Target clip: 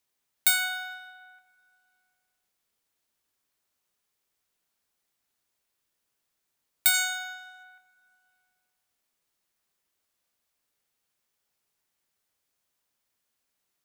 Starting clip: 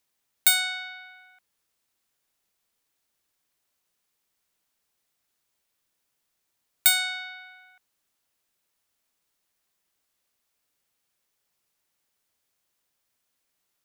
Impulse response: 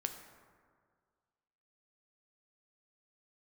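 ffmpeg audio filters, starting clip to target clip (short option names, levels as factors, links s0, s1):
-filter_complex "[0:a]asettb=1/sr,asplit=3[s0][s1][s2];[s0]atrim=end=6.944[s3];[s1]atrim=start=6.94:end=7.63,asetpts=PTS-STARTPTS,afade=t=in:d=0.004:c=qsin,afade=t=out:st=0.686:d=0.004:c=qsin,equalizer=f=6800:w=2.6:g=15[s4];[s2]atrim=start=7.626[s5];[s3][s4]acrossfade=d=0.004:c1=hsin:c2=qsin[s6];[s6][s5]acrossfade=d=0.004:c1=qsin:c2=hsin[s7];[1:a]atrim=start_sample=2205[s8];[s7][s8]afir=irnorm=-1:irlink=0,volume=0.794"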